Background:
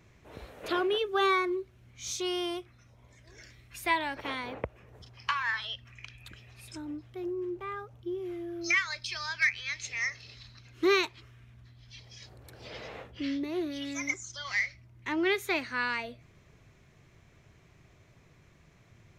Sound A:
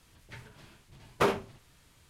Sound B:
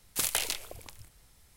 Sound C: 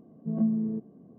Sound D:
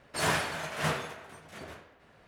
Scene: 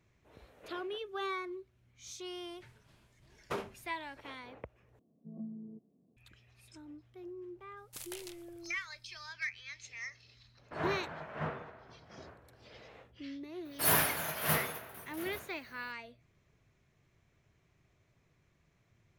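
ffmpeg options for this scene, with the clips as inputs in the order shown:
ffmpeg -i bed.wav -i cue0.wav -i cue1.wav -i cue2.wav -i cue3.wav -filter_complex "[4:a]asplit=2[link_01][link_02];[0:a]volume=-11.5dB[link_03];[3:a]lowpass=frequency=1000:width=0.5412,lowpass=frequency=1000:width=1.3066[link_04];[link_01]lowpass=1500[link_05];[link_02]aexciter=amount=15.6:drive=5.3:freq=11000[link_06];[link_03]asplit=2[link_07][link_08];[link_07]atrim=end=4.994[link_09];[link_04]atrim=end=1.18,asetpts=PTS-STARTPTS,volume=-18dB[link_10];[link_08]atrim=start=6.166[link_11];[1:a]atrim=end=2.09,asetpts=PTS-STARTPTS,volume=-12dB,afade=type=in:duration=0.004:curve=hsin,afade=type=out:start_time=2.086:duration=0.004:curve=hsin,adelay=2300[link_12];[2:a]atrim=end=1.56,asetpts=PTS-STARTPTS,volume=-17dB,afade=type=in:duration=0.004:curve=hsin,afade=type=out:start_time=1.556:duration=0.004:curve=hsin,adelay=7770[link_13];[link_05]atrim=end=2.27,asetpts=PTS-STARTPTS,volume=-6dB,afade=type=in:duration=0.004:curve=hsin,afade=type=out:start_time=2.266:duration=0.004:curve=hsin,adelay=10570[link_14];[link_06]atrim=end=2.27,asetpts=PTS-STARTPTS,volume=-2.5dB,afade=type=in:duration=0.004:curve=hsin,afade=type=out:start_time=2.266:duration=0.004:curve=hsin,adelay=13650[link_15];[link_09][link_10]acrossfade=duration=0.004:curve1=hsin:curve2=hsin[link_16];[link_16][link_11]acrossfade=duration=0.004:curve1=hsin:curve2=hsin[link_17];[link_17][link_12][link_13][link_14][link_15]amix=inputs=5:normalize=0" out.wav

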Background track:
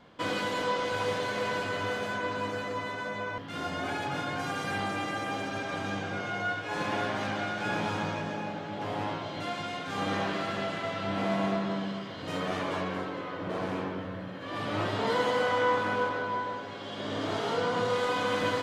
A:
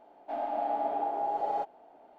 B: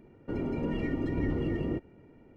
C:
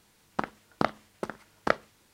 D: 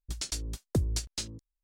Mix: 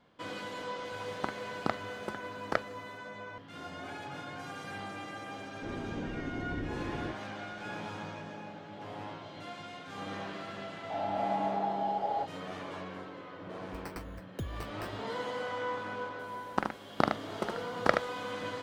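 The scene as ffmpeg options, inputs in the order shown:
ffmpeg -i bed.wav -i cue0.wav -i cue1.wav -i cue2.wav -i cue3.wav -filter_complex "[3:a]asplit=2[link_01][link_02];[0:a]volume=-9.5dB[link_03];[4:a]acrusher=samples=13:mix=1:aa=0.000001[link_04];[link_02]aecho=1:1:75:0.531[link_05];[link_01]atrim=end=2.13,asetpts=PTS-STARTPTS,volume=-5.5dB,afade=type=in:duration=0.004:curve=hsin,afade=type=out:start_time=2.126:duration=0.004:curve=hsin,adelay=850[link_06];[2:a]atrim=end=2.36,asetpts=PTS-STARTPTS,volume=-7.5dB,afade=type=in:duration=0.004:curve=hsin,afade=type=out:start_time=2.356:duration=0.004:curve=hsin,adelay=5340[link_07];[1:a]atrim=end=2.18,asetpts=PTS-STARTPTS,volume=-1.5dB,afade=type=in:duration=0.004:curve=hsin,afade=type=out:start_time=2.176:duration=0.004:curve=hsin,adelay=10610[link_08];[link_04]atrim=end=1.63,asetpts=PTS-STARTPTS,volume=-10.5dB,afade=type=in:duration=0.004:curve=hsin,afade=type=out:start_time=1.626:duration=0.004:curve=hsin,adelay=601524S[link_09];[link_05]atrim=end=2.13,asetpts=PTS-STARTPTS,volume=-1dB,afade=type=in:duration=0.004:curve=hsin,afade=type=out:start_time=2.126:duration=0.004:curve=hsin,adelay=16190[link_10];[link_03][link_06][link_07][link_08][link_09][link_10]amix=inputs=6:normalize=0" out.wav

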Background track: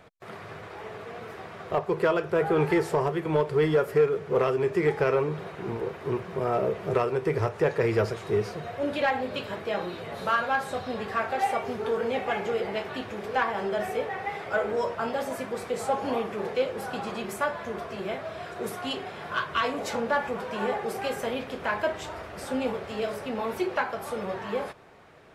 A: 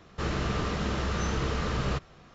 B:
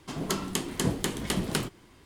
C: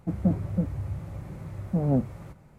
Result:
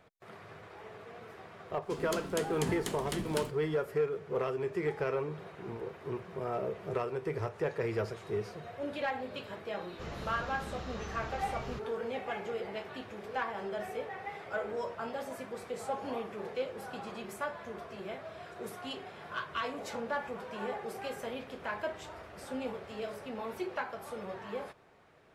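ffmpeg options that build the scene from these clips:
ffmpeg -i bed.wav -i cue0.wav -i cue1.wav -filter_complex "[0:a]volume=-9dB[link_01];[2:a]atrim=end=2.05,asetpts=PTS-STARTPTS,volume=-8.5dB,afade=type=in:duration=0.004:curve=hsin,afade=type=out:start_time=2.046:duration=0.004:curve=hsin,adelay=1820[link_02];[1:a]atrim=end=2.34,asetpts=PTS-STARTPTS,volume=-13.5dB,afade=type=in:duration=0.004:curve=hsin,afade=type=out:start_time=2.336:duration=0.004:curve=hsin,adelay=9810[link_03];[link_01][link_02][link_03]amix=inputs=3:normalize=0" out.wav

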